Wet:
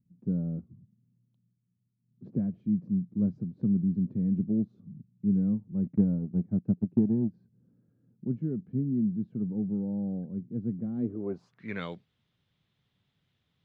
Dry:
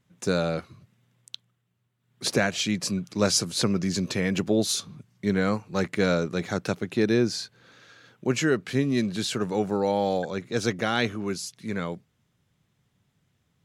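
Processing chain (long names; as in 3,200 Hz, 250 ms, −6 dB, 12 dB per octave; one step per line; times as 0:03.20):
low-pass filter sweep 210 Hz → 3,700 Hz, 0:10.95–0:11.86
0:05.86–0:07.34: transient designer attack +7 dB, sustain −6 dB
level −6.5 dB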